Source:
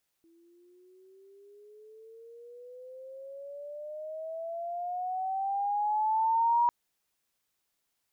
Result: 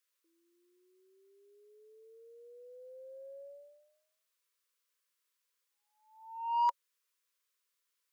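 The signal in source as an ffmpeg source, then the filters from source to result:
-f lavfi -i "aevalsrc='pow(10,(-21+38*(t/6.45-1))/20)*sin(2*PI*330*6.45/(18.5*log(2)/12)*(exp(18.5*log(2)/12*t/6.45)-1))':duration=6.45:sample_rate=44100"
-af "asuperstop=centerf=730:order=20:qfactor=1.9,aeval=exprs='0.106*(cos(1*acos(clip(val(0)/0.106,-1,1)))-cos(1*PI/2))+0.00668*(cos(3*acos(clip(val(0)/0.106,-1,1)))-cos(3*PI/2))+0.00473*(cos(5*acos(clip(val(0)/0.106,-1,1)))-cos(5*PI/2))+0.00531*(cos(7*acos(clip(val(0)/0.106,-1,1)))-cos(7*PI/2))':channel_layout=same,highpass=frequency=460:width=0.5412,highpass=frequency=460:width=1.3066"

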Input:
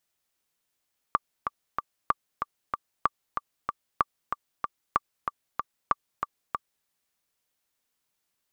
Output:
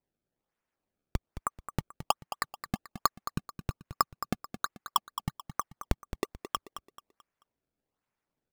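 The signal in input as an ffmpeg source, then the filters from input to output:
-f lavfi -i "aevalsrc='pow(10,(-8-6.5*gte(mod(t,3*60/189),60/189))/20)*sin(2*PI*1170*mod(t,60/189))*exp(-6.91*mod(t,60/189)/0.03)':duration=5.71:sample_rate=44100"
-filter_complex "[0:a]lowpass=frequency=2400:width=0.5412,lowpass=frequency=2400:width=1.3066,acrusher=samples=26:mix=1:aa=0.000001:lfo=1:lforange=41.6:lforate=1.2,asplit=2[link_01][link_02];[link_02]aecho=0:1:218|436|654|872:0.282|0.101|0.0365|0.0131[link_03];[link_01][link_03]amix=inputs=2:normalize=0"

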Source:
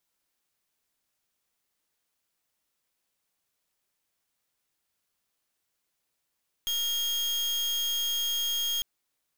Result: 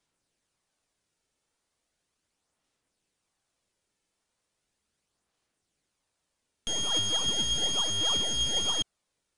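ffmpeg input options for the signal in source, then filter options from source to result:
-f lavfi -i "aevalsrc='0.0355*(2*lt(mod(3250*t,1),0.37)-1)':duration=2.15:sample_rate=44100"
-filter_complex "[0:a]aphaser=in_gain=1:out_gain=1:delay=2.3:decay=0.35:speed=0.37:type=sinusoidal,asplit=2[link_01][link_02];[link_02]acrusher=samples=27:mix=1:aa=0.000001:lfo=1:lforange=27:lforate=1.1,volume=-10dB[link_03];[link_01][link_03]amix=inputs=2:normalize=0,aresample=22050,aresample=44100"

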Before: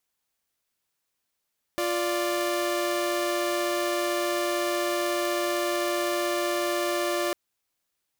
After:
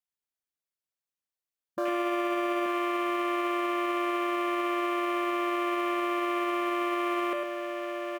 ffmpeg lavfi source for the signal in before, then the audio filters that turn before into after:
-f lavfi -i "aevalsrc='0.0562*((2*mod(349.23*t,1)-1)+(2*mod(587.33*t,1)-1))':duration=5.55:sample_rate=44100"
-af "afwtdn=0.0224,aecho=1:1:103|881:0.376|0.447,alimiter=limit=-21dB:level=0:latency=1"

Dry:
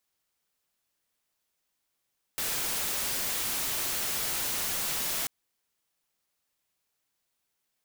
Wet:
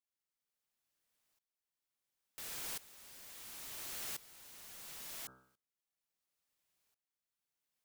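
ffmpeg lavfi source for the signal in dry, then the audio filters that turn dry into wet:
-f lavfi -i "anoisesrc=color=white:amplitude=0.0488:duration=2.89:sample_rate=44100:seed=1"
-af "bandreject=frequency=64.23:width_type=h:width=4,bandreject=frequency=128.46:width_type=h:width=4,bandreject=frequency=192.69:width_type=h:width=4,bandreject=frequency=256.92:width_type=h:width=4,bandreject=frequency=321.15:width_type=h:width=4,bandreject=frequency=385.38:width_type=h:width=4,bandreject=frequency=449.61:width_type=h:width=4,bandreject=frequency=513.84:width_type=h:width=4,bandreject=frequency=578.07:width_type=h:width=4,bandreject=frequency=642.3:width_type=h:width=4,bandreject=frequency=706.53:width_type=h:width=4,bandreject=frequency=770.76:width_type=h:width=4,bandreject=frequency=834.99:width_type=h:width=4,bandreject=frequency=899.22:width_type=h:width=4,bandreject=frequency=963.45:width_type=h:width=4,bandreject=frequency=1027.68:width_type=h:width=4,bandreject=frequency=1091.91:width_type=h:width=4,bandreject=frequency=1156.14:width_type=h:width=4,bandreject=frequency=1220.37:width_type=h:width=4,bandreject=frequency=1284.6:width_type=h:width=4,bandreject=frequency=1348.83:width_type=h:width=4,bandreject=frequency=1413.06:width_type=h:width=4,bandreject=frequency=1477.29:width_type=h:width=4,bandreject=frequency=1541.52:width_type=h:width=4,bandreject=frequency=1605.75:width_type=h:width=4,alimiter=level_in=12dB:limit=-24dB:level=0:latency=1:release=18,volume=-12dB,aeval=exprs='val(0)*pow(10,-19*if(lt(mod(-0.72*n/s,1),2*abs(-0.72)/1000),1-mod(-0.72*n/s,1)/(2*abs(-0.72)/1000),(mod(-0.72*n/s,1)-2*abs(-0.72)/1000)/(1-2*abs(-0.72)/1000))/20)':channel_layout=same"

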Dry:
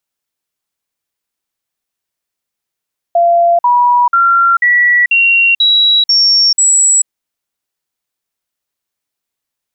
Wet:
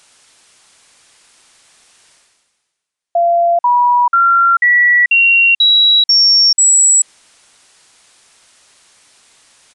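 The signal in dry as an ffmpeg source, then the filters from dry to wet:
-f lavfi -i "aevalsrc='0.501*clip(min(mod(t,0.49),0.44-mod(t,0.49))/0.005,0,1)*sin(2*PI*687*pow(2,floor(t/0.49)/2)*mod(t,0.49))':duration=3.92:sample_rate=44100"
-af "aresample=22050,aresample=44100,lowshelf=frequency=500:gain=-7.5,areverse,acompressor=mode=upward:threshold=-24dB:ratio=2.5,areverse"

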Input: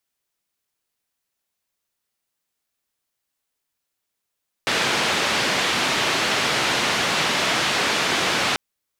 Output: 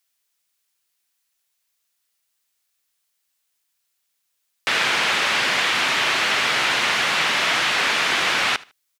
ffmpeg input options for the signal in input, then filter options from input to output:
-f lavfi -i "anoisesrc=color=white:duration=3.89:sample_rate=44100:seed=1,highpass=frequency=130,lowpass=frequency=3500,volume=-8.9dB"
-filter_complex "[0:a]acrossover=split=3000[link_01][link_02];[link_02]acompressor=threshold=-35dB:ratio=4:attack=1:release=60[link_03];[link_01][link_03]amix=inputs=2:normalize=0,tiltshelf=frequency=970:gain=-7,aecho=1:1:76|152:0.0841|0.0202"

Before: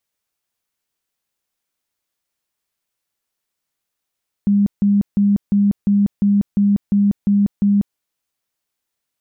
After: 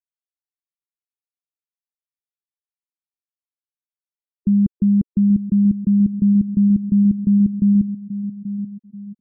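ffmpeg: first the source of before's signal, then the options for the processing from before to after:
-f lavfi -i "aevalsrc='0.282*sin(2*PI*202*mod(t,0.35))*lt(mod(t,0.35),39/202)':duration=3.5:sample_rate=44100"
-filter_complex "[0:a]asplit=2[link_01][link_02];[link_02]aecho=0:1:833|1666|2499|3332:0.251|0.1|0.0402|0.0161[link_03];[link_01][link_03]amix=inputs=2:normalize=0,afftfilt=real='re*gte(hypot(re,im),0.112)':imag='im*gte(hypot(re,im),0.112)':win_size=1024:overlap=0.75"

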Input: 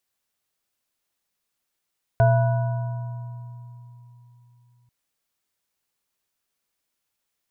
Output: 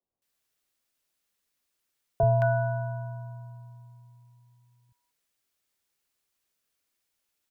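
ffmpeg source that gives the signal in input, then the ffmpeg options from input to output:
-f lavfi -i "aevalsrc='0.188*pow(10,-3*t/3.66)*sin(2*PI*121*t)+0.0251*pow(10,-3*t/0.41)*sin(2*PI*433*t)+0.158*pow(10,-3*t/1.83)*sin(2*PI*673*t)+0.0316*pow(10,-3*t/3.42)*sin(2*PI*970*t)+0.0355*pow(10,-3*t/1.66)*sin(2*PI*1480*t)':duration=2.69:sample_rate=44100"
-filter_complex "[0:a]acrossover=split=150|890[link_01][link_02][link_03];[link_01]adelay=30[link_04];[link_03]adelay=220[link_05];[link_04][link_02][link_05]amix=inputs=3:normalize=0"

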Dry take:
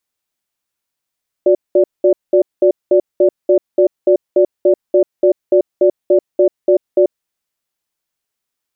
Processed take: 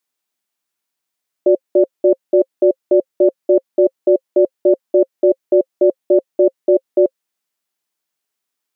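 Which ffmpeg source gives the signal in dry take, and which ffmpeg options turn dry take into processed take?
-f lavfi -i "aevalsrc='0.335*(sin(2*PI*364*t)+sin(2*PI*582*t))*clip(min(mod(t,0.29),0.09-mod(t,0.29))/0.005,0,1)':duration=5.66:sample_rate=44100"
-af "highpass=170,bandreject=frequency=530:width=12"

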